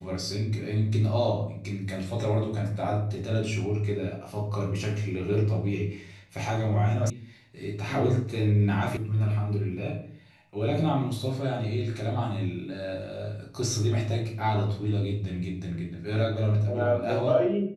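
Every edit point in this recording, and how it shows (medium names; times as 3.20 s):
7.10 s: sound stops dead
8.97 s: sound stops dead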